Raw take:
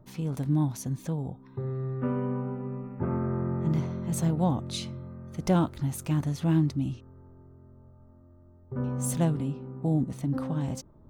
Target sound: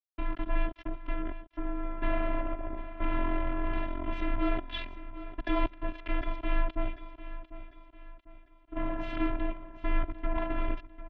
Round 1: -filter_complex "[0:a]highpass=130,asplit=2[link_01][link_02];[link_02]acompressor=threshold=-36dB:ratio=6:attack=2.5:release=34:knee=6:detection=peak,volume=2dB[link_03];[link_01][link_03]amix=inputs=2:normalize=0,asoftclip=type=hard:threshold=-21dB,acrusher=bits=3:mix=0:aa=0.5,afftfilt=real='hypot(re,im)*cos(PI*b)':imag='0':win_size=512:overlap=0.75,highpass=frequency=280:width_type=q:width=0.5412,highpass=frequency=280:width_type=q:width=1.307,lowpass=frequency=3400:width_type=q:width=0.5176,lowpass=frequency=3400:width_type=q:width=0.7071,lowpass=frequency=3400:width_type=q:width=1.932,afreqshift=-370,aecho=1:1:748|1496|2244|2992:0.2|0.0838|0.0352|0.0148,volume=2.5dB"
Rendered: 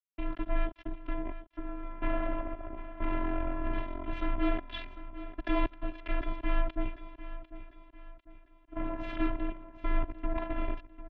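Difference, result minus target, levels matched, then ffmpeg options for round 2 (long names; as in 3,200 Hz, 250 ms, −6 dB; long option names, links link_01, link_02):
downward compressor: peak gain reduction +5.5 dB
-filter_complex "[0:a]highpass=130,asplit=2[link_01][link_02];[link_02]acompressor=threshold=-29.5dB:ratio=6:attack=2.5:release=34:knee=6:detection=peak,volume=2dB[link_03];[link_01][link_03]amix=inputs=2:normalize=0,asoftclip=type=hard:threshold=-21dB,acrusher=bits=3:mix=0:aa=0.5,afftfilt=real='hypot(re,im)*cos(PI*b)':imag='0':win_size=512:overlap=0.75,highpass=frequency=280:width_type=q:width=0.5412,highpass=frequency=280:width_type=q:width=1.307,lowpass=frequency=3400:width_type=q:width=0.5176,lowpass=frequency=3400:width_type=q:width=0.7071,lowpass=frequency=3400:width_type=q:width=1.932,afreqshift=-370,aecho=1:1:748|1496|2244|2992:0.2|0.0838|0.0352|0.0148,volume=2.5dB"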